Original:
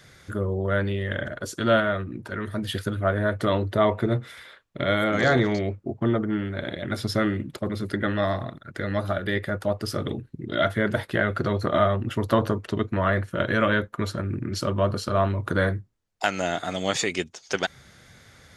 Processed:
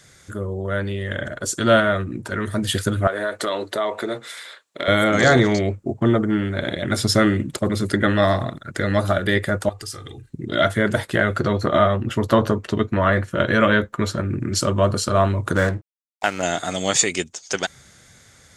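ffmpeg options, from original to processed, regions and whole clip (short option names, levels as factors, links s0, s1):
-filter_complex "[0:a]asettb=1/sr,asplit=3[s0][s1][s2];[s0]atrim=end=3.074[s3];[s1]atrim=start=3.07:end=4.88,asetpts=PTS-STARTPTS,afade=t=in:d=0.004:c=qsin,afade=t=out:st=1.806:d=0.004:c=qsin,highpass=400,equalizer=f=4100:w=3.7:g=5,acompressor=threshold=0.0447:ratio=3:attack=3.2:release=140:knee=1:detection=peak[s4];[s2]atrim=start=4.876[s5];[s3][s4]acrossfade=d=0.004:c1=hsin:c2=qsin[s6];[s6][s5]acrossfade=d=0.004:c1=qsin:c2=hsin,asettb=1/sr,asplit=3[s7][s8][s9];[s7]atrim=end=9.694[s10];[s8]atrim=start=9.69:end=10.3,asetpts=PTS-STARTPTS,afade=t=in:d=0.004:c=qsin,afade=t=out:st=0.606:d=0.004:c=qsin,equalizer=f=360:w=0.41:g=-11.5,aecho=1:1:2.5:0.68,atrim=end_sample=26901,acompressor=threshold=0.0126:ratio=6:attack=3.2:release=140:knee=1:detection=peak[s11];[s9]atrim=start=10.296[s12];[s10][s11]acrossfade=d=0.004:c1=hsin:c2=qsin[s13];[s13][s12]acrossfade=d=0.004:c1=qsin:c2=hsin,asettb=1/sr,asplit=3[s14][s15][s16];[s14]atrim=end=11.404[s17];[s15]atrim=start=11.4:end=14.4,asetpts=PTS-STARTPTS,afade=t=in:d=0.004:c=qsin,afade=t=out:st=2.996:d=0.004:c=qsin,equalizer=f=9000:w=1:g=-8,asplit=2[s18][s19];[s19]adelay=14,volume=0.2[s20];[s18][s20]amix=inputs=2:normalize=0,atrim=end_sample=132300[s21];[s16]atrim=start=14.396[s22];[s17][s21]acrossfade=d=0.004:c1=hsin:c2=qsin[s23];[s23][s22]acrossfade=d=0.004:c1=qsin:c2=hsin,asettb=1/sr,asplit=3[s24][s25][s26];[s24]atrim=end=15.554[s27];[s25]atrim=start=15.55:end=16.43,asetpts=PTS-STARTPTS,afade=t=in:d=0.004:c=qsin,afade=t=out:st=0.876:d=0.004:c=qsin,lowpass=2900,aeval=exprs='sgn(val(0))*max(abs(val(0))-0.0106,0)':c=same[s28];[s26]atrim=start=16.426[s29];[s27][s28]acrossfade=d=0.004:c1=hsin:c2=qsin[s30];[s30][s29]acrossfade=d=0.004:c1=qsin:c2=hsin,equalizer=f=7700:w=1.4:g=11.5,dynaudnorm=f=160:g=17:m=3.76,volume=0.891"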